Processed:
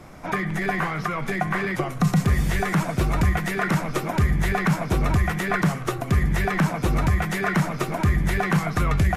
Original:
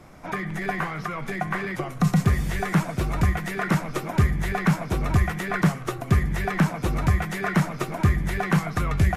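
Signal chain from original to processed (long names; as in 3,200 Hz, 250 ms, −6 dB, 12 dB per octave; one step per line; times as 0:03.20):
brickwall limiter −15.5 dBFS, peak gain reduction 7 dB
level +4 dB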